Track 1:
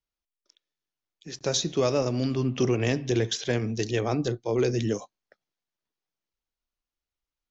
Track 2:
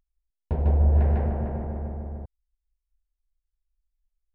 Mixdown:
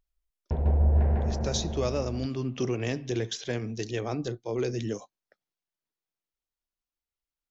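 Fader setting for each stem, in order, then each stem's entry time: -5.0 dB, -2.5 dB; 0.00 s, 0.00 s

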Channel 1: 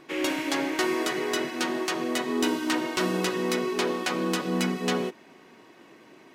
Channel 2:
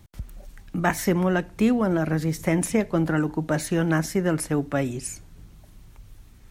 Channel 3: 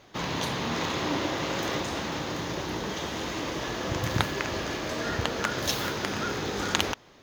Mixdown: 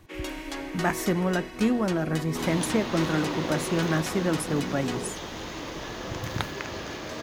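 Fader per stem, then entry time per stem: -8.0 dB, -3.5 dB, -4.0 dB; 0.00 s, 0.00 s, 2.20 s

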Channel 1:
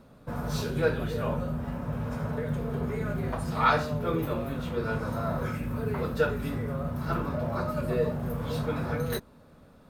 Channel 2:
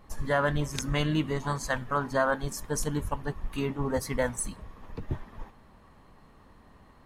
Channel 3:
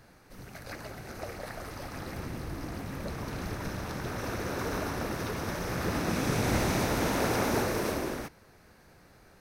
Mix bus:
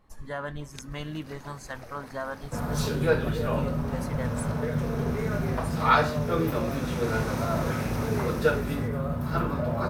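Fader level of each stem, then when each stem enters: +2.5 dB, -8.5 dB, -7.5 dB; 2.25 s, 0.00 s, 0.60 s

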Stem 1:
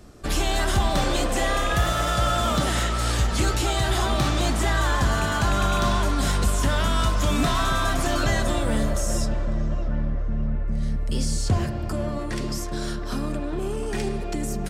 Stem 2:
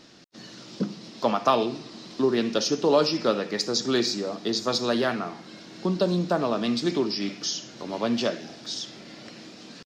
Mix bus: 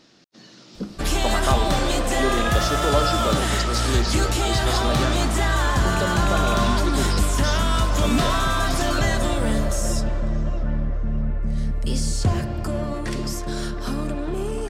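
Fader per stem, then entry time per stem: +1.5 dB, -3.0 dB; 0.75 s, 0.00 s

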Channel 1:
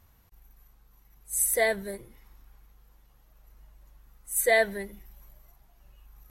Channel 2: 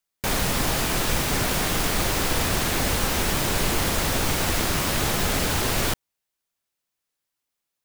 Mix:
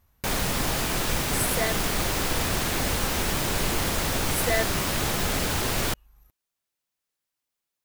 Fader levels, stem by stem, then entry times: -4.5 dB, -2.5 dB; 0.00 s, 0.00 s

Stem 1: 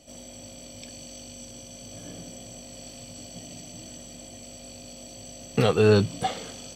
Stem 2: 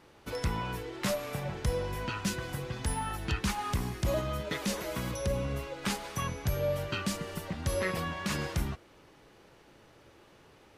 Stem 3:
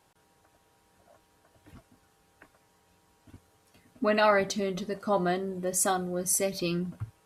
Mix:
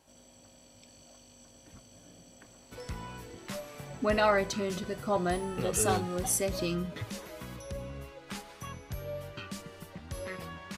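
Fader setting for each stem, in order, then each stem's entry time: -14.0 dB, -8.5 dB, -2.5 dB; 0.00 s, 2.45 s, 0.00 s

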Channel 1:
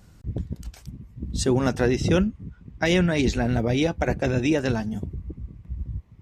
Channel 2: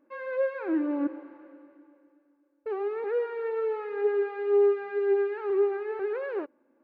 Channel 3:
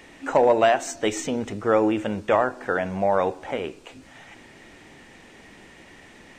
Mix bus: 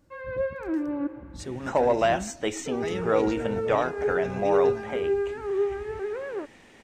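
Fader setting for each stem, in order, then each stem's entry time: -14.0 dB, -1.0 dB, -4.5 dB; 0.00 s, 0.00 s, 1.40 s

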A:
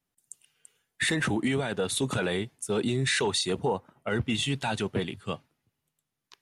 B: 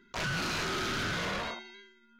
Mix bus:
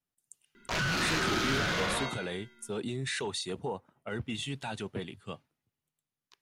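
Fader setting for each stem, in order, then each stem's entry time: -8.0 dB, +2.5 dB; 0.00 s, 0.55 s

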